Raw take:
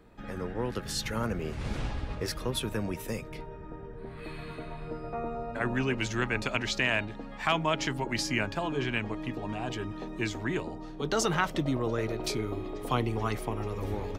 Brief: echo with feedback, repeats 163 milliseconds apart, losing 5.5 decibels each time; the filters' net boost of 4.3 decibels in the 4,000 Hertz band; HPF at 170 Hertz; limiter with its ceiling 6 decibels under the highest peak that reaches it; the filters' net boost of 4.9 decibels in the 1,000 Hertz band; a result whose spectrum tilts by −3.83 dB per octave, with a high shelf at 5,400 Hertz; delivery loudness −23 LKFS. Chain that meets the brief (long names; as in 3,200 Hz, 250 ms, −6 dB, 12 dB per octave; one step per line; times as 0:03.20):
high-pass filter 170 Hz
parametric band 1,000 Hz +6 dB
parametric band 4,000 Hz +8 dB
high-shelf EQ 5,400 Hz −6.5 dB
brickwall limiter −16 dBFS
repeating echo 163 ms, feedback 53%, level −5.5 dB
level +7 dB